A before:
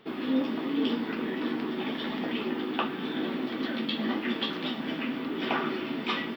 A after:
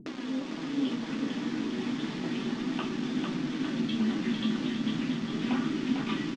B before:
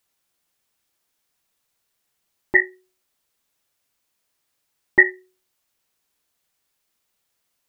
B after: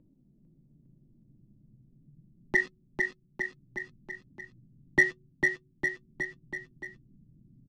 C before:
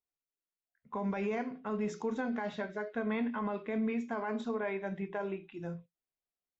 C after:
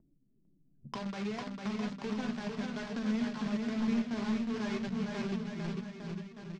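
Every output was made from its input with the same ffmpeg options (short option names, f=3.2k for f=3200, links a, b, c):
-filter_complex "[0:a]acrossover=split=250[a][b];[a]aecho=1:1:3.2:0.32[c];[b]acrusher=bits=5:mix=0:aa=0.000001[d];[c][d]amix=inputs=2:normalize=0,lowpass=f=5.9k:w=0.5412,lowpass=f=5.9k:w=1.3066,lowshelf=f=110:t=q:w=3:g=-8,flanger=delay=3:depth=7.3:regen=54:speed=0.35:shape=triangular,asplit=2[e][f];[f]asoftclip=type=hard:threshold=-14.5dB,volume=-4dB[g];[e][g]amix=inputs=2:normalize=0,asubboost=boost=5:cutoff=230,acompressor=mode=upward:threshold=-26dB:ratio=2.5,aecho=1:1:450|855|1220|1548|1843:0.631|0.398|0.251|0.158|0.1,volume=-7.5dB"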